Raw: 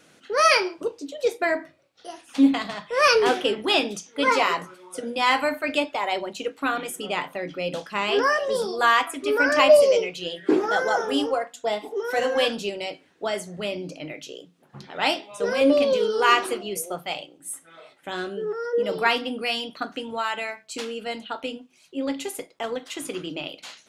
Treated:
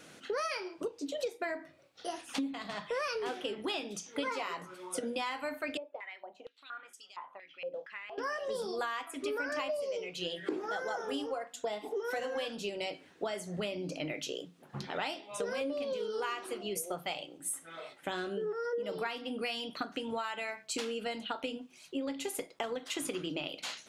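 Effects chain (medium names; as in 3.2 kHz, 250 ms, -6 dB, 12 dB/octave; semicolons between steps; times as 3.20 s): compression 16:1, threshold -34 dBFS, peak gain reduction 24.5 dB; 5.77–8.18 s: step-sequenced band-pass 4.3 Hz 530–5200 Hz; trim +1.5 dB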